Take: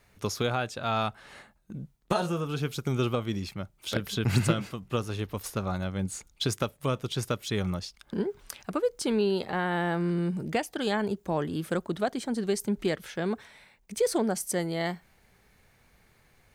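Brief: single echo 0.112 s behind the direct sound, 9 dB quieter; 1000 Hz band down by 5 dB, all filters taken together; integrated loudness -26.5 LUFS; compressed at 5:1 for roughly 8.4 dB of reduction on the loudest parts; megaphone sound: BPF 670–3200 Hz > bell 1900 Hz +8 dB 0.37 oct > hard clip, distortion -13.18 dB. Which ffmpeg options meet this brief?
-af "equalizer=f=1k:t=o:g=-6,acompressor=threshold=-29dB:ratio=5,highpass=670,lowpass=3.2k,equalizer=f=1.9k:t=o:w=0.37:g=8,aecho=1:1:112:0.355,asoftclip=type=hard:threshold=-32dB,volume=15dB"

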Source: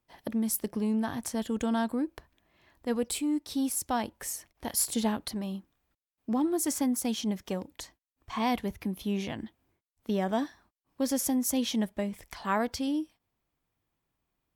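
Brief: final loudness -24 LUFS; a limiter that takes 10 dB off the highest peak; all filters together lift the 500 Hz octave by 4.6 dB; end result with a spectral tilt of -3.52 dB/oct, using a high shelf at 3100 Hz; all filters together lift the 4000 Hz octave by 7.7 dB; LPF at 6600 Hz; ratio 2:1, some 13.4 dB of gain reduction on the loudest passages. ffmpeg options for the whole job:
-af "lowpass=6.6k,equalizer=f=500:t=o:g=5.5,highshelf=f=3.1k:g=4.5,equalizer=f=4k:t=o:g=7,acompressor=threshold=-47dB:ratio=2,volume=20.5dB,alimiter=limit=-14dB:level=0:latency=1"

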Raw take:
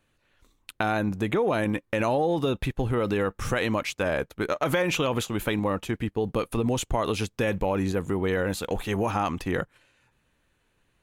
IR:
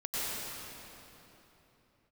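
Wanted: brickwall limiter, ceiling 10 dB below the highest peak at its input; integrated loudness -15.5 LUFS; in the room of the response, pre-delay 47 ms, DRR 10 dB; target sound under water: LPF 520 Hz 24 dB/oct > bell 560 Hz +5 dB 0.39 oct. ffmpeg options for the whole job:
-filter_complex "[0:a]alimiter=limit=-19.5dB:level=0:latency=1,asplit=2[a][b];[1:a]atrim=start_sample=2205,adelay=47[c];[b][c]afir=irnorm=-1:irlink=0,volume=-17dB[d];[a][d]amix=inputs=2:normalize=0,lowpass=f=520:w=0.5412,lowpass=f=520:w=1.3066,equalizer=f=560:t=o:w=0.39:g=5,volume=15.5dB"

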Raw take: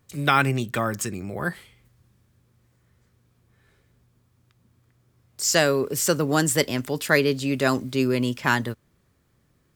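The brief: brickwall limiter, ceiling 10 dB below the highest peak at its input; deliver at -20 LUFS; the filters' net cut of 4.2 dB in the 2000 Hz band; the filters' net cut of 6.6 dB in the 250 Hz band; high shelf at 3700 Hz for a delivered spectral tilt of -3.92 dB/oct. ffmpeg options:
-af "equalizer=f=250:t=o:g=-8.5,equalizer=f=2k:t=o:g=-6.5,highshelf=f=3.7k:g=4,volume=8dB,alimiter=limit=-7.5dB:level=0:latency=1"

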